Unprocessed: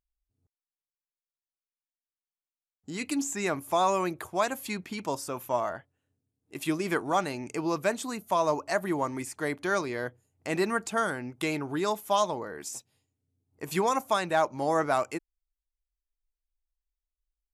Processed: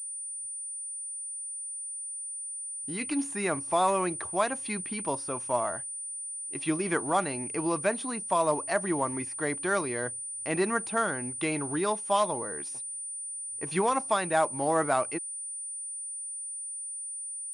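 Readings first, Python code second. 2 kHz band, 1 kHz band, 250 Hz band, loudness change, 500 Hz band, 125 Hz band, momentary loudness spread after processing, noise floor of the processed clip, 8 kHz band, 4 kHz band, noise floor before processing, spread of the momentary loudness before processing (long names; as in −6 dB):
0.0 dB, 0.0 dB, 0.0 dB, −0.5 dB, 0.0 dB, 0.0 dB, 8 LU, −38 dBFS, +10.5 dB, −3.0 dB, below −85 dBFS, 10 LU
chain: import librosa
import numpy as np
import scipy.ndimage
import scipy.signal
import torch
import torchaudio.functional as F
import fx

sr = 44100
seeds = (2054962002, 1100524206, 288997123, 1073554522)

y = fx.quant_float(x, sr, bits=4)
y = fx.pwm(y, sr, carrier_hz=9300.0)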